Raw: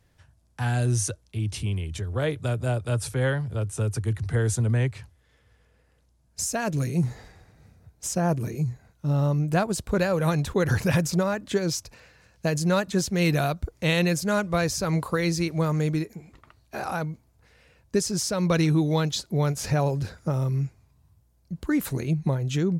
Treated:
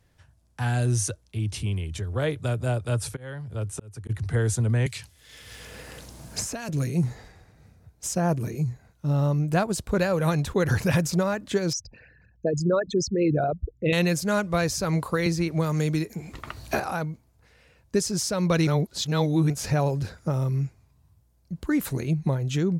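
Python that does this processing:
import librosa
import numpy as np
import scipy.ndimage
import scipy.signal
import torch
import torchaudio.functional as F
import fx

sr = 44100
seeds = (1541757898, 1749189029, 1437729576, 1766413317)

y = fx.auto_swell(x, sr, attack_ms=595.0, at=(3.15, 4.09), fade=0.02)
y = fx.band_squash(y, sr, depth_pct=100, at=(4.86, 6.69))
y = fx.envelope_sharpen(y, sr, power=3.0, at=(11.73, 13.93))
y = fx.band_squash(y, sr, depth_pct=100, at=(15.26, 16.8))
y = fx.edit(y, sr, fx.reverse_span(start_s=18.67, length_s=0.83), tone=tone)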